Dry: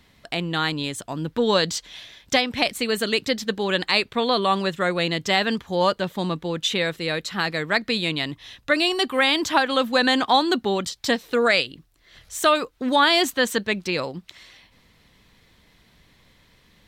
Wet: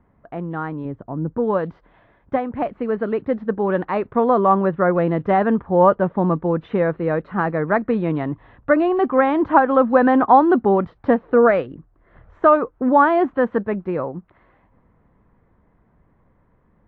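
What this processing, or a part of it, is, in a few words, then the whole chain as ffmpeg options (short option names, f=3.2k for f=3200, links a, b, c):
action camera in a waterproof case: -filter_complex "[0:a]asettb=1/sr,asplit=3[a][b][c];[a]atrim=end=0.854[d];[b]atrim=start=0.85:end=1.38,asetpts=PTS-STARTPTS,afade=t=in:d=0.004:c=qsin,afade=t=out:st=0.526:d=0.004:c=qsin,tiltshelf=f=660:g=5[e];[c]atrim=start=1.376[f];[d][e]acrossfade=d=0.004:c1=hsin:c2=qsin[g];[g][f]acrossfade=d=0.004:c1=qsin:c2=hsin,lowpass=f=1.3k:w=0.5412,lowpass=f=1.3k:w=1.3066,dynaudnorm=f=230:g=31:m=11.5dB" -ar 24000 -c:a aac -b:a 48k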